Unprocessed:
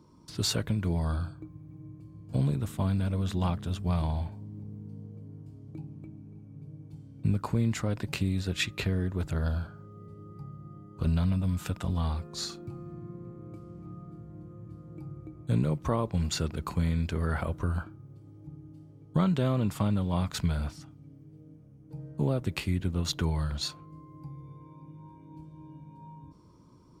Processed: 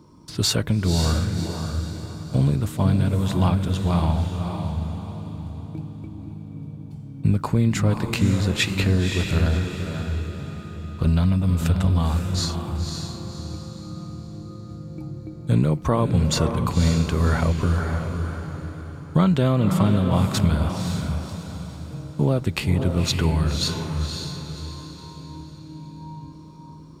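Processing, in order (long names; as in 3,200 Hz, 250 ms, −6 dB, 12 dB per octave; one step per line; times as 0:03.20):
feedback delay with all-pass diffusion 544 ms, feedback 42%, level −5 dB
level +7.5 dB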